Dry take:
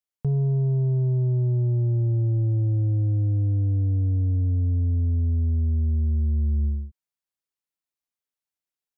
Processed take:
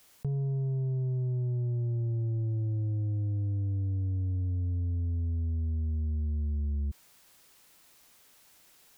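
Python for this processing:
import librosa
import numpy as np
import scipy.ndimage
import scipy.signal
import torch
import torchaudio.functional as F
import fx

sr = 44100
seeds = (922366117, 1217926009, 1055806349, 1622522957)

y = fx.env_flatten(x, sr, amount_pct=100)
y = y * 10.0 ** (-8.5 / 20.0)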